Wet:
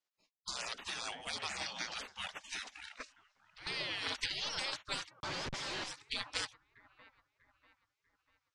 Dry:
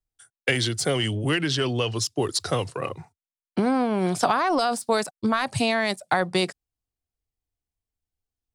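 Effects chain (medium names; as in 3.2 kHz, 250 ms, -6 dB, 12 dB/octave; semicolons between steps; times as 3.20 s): 3.00–3.67 s: compressor with a negative ratio -30 dBFS, ratio -0.5; on a send: feedback echo behind a band-pass 643 ms, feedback 41%, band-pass 410 Hz, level -18 dB; on the sum: spectral gate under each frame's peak -30 dB weak; 5.20–5.84 s: Schmitt trigger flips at -55.5 dBFS; low-pass 6.3 kHz 24 dB/octave; trim +7.5 dB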